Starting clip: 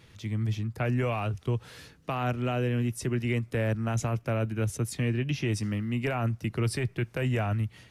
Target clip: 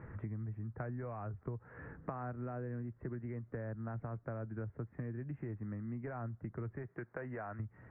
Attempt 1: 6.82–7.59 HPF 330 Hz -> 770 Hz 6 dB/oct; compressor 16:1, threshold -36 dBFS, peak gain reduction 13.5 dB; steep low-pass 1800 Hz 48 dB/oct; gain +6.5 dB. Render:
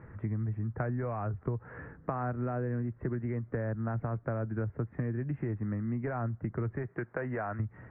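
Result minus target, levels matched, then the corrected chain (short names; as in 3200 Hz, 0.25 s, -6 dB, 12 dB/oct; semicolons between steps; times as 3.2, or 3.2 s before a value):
compressor: peak gain reduction -8.5 dB
6.82–7.59 HPF 330 Hz -> 770 Hz 6 dB/oct; compressor 16:1, threshold -45 dBFS, peak gain reduction 22 dB; steep low-pass 1800 Hz 48 dB/oct; gain +6.5 dB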